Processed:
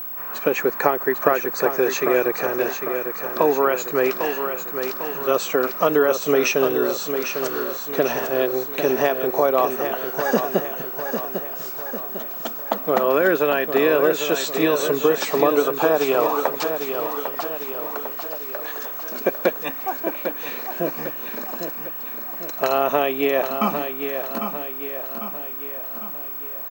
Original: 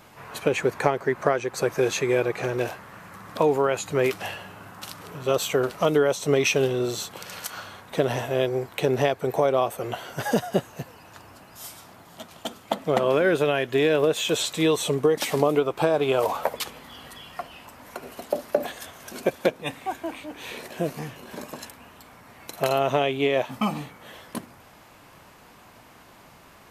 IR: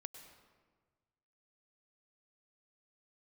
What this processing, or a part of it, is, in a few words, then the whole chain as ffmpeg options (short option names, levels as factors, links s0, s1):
old television with a line whistle: -filter_complex "[0:a]highpass=f=190:w=0.5412,highpass=f=190:w=1.3066,equalizer=f=1200:t=q:w=4:g=5,equalizer=f=1700:t=q:w=4:g=3,equalizer=f=3300:t=q:w=4:g=-7,lowpass=f=7300:w=0.5412,lowpass=f=7300:w=1.3066,aeval=exprs='val(0)+0.0282*sin(2*PI*15734*n/s)':c=same,asettb=1/sr,asplit=3[s0][s1][s2];[s0]atrim=end=18.124[s3];[s1]atrim=start=18.12:end=18.75,asetpts=PTS-STARTPTS,afade=t=in:d=0.004:c=qsin,afade=t=out:st=0.626:d=0.004:c=qsin,highpass=1400[s4];[s2]atrim=start=18.746[s5];[s3][s4]acrossfade=d=0.004:c1=hsin:c2=qsin[s6];[s6][s5]acrossfade=d=0.004:c1=qsin:c2=hsin,bandreject=f=2100:w=15,aecho=1:1:800|1600|2400|3200|4000|4800:0.422|0.223|0.118|0.0628|0.0333|0.0176,volume=1.33"